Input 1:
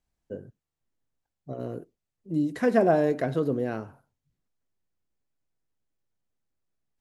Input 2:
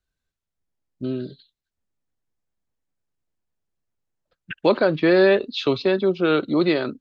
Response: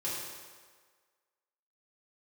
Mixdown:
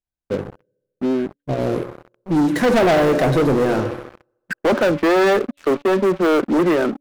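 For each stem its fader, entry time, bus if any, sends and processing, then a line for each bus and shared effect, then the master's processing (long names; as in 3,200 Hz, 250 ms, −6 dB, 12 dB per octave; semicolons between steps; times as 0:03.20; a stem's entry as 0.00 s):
−4.0 dB, 0.00 s, send −11.5 dB, no processing
−8.5 dB, 0.00 s, no send, elliptic band-pass filter 190–1,900 Hz, stop band 40 dB; hum removal 286.2 Hz, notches 2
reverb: on, RT60 1.6 s, pre-delay 3 ms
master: leveller curve on the samples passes 5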